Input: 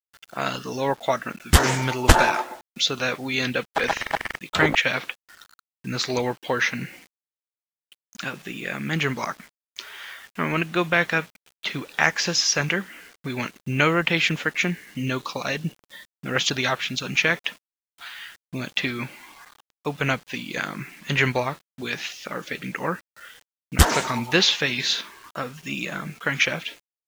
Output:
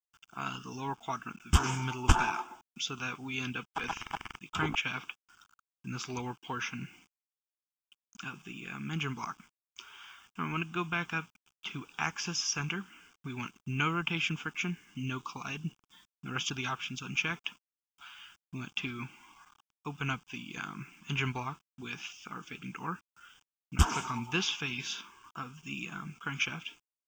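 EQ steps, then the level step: treble shelf 5.6 kHz -4.5 dB; static phaser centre 2.8 kHz, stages 8; -7.5 dB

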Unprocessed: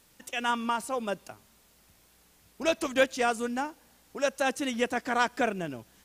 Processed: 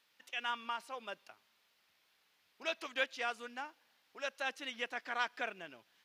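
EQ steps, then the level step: distance through air 330 m; differentiator; +8.0 dB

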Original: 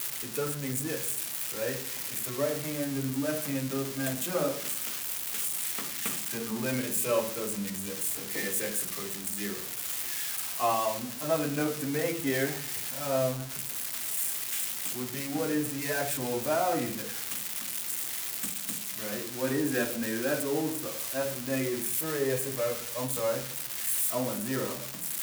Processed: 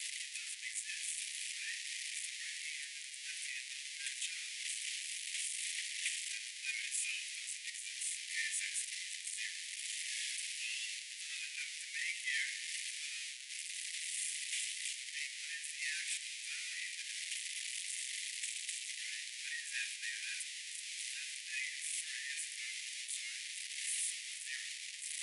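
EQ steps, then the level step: steep high-pass 1.9 kHz 72 dB/octave; brick-wall FIR low-pass 11 kHz; treble shelf 4.6 kHz -11.5 dB; +3.5 dB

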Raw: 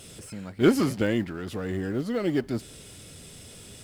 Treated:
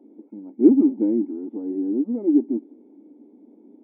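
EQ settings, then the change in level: cascade formant filter u; brick-wall FIR high-pass 210 Hz; bass shelf 450 Hz +9 dB; +5.5 dB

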